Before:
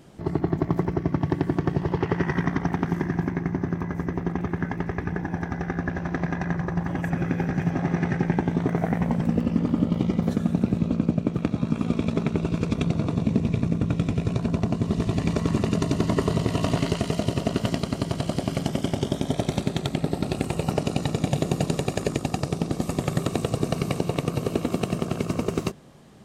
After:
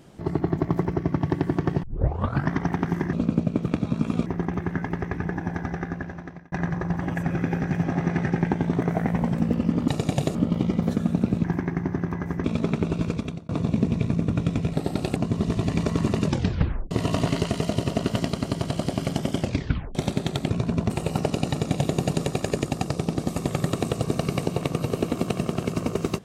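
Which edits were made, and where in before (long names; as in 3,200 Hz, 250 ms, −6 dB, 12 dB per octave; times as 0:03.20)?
0:01.83: tape start 0.69 s
0:03.13–0:04.13: swap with 0:10.84–0:11.97
0:05.53–0:06.39: fade out
0:12.57–0:13.02: fade out
0:14.26–0:14.66: swap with 0:20.00–0:20.43
0:15.73: tape stop 0.68 s
0:18.90: tape stop 0.55 s
0:21.03–0:21.50: duplicate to 0:09.75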